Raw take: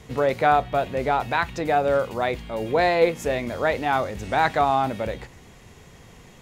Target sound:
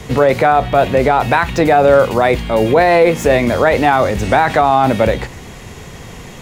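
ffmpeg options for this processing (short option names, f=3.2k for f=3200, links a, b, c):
-filter_complex "[0:a]acrossover=split=210|2700[a][b][c];[c]asoftclip=type=tanh:threshold=-39.5dB[d];[a][b][d]amix=inputs=3:normalize=0,alimiter=level_in=16dB:limit=-1dB:release=50:level=0:latency=1,volume=-1dB"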